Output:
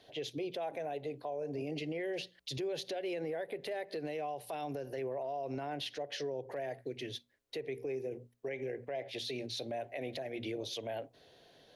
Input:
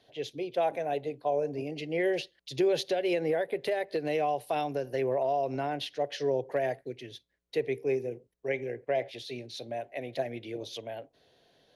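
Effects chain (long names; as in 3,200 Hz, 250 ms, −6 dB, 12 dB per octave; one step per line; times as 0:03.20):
mains-hum notches 60/120/180/240 Hz
downward compressor, threshold −35 dBFS, peak gain reduction 12 dB
brickwall limiter −34 dBFS, peak gain reduction 10 dB
level +3.5 dB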